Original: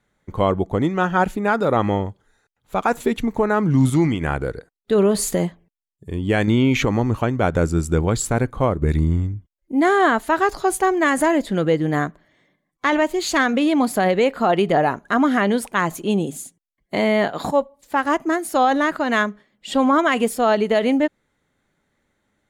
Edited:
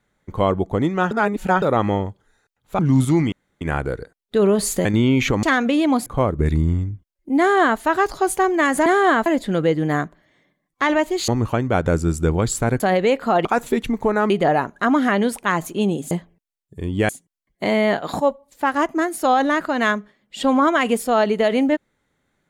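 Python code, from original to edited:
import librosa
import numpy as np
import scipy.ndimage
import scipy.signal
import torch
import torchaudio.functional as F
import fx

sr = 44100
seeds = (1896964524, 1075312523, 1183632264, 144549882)

y = fx.edit(x, sr, fx.reverse_span(start_s=1.11, length_s=0.51),
    fx.move(start_s=2.79, length_s=0.85, to_s=14.59),
    fx.insert_room_tone(at_s=4.17, length_s=0.29),
    fx.move(start_s=5.41, length_s=0.98, to_s=16.4),
    fx.swap(start_s=6.97, length_s=1.52, other_s=13.31, other_length_s=0.63),
    fx.duplicate(start_s=9.82, length_s=0.4, to_s=11.29), tone=tone)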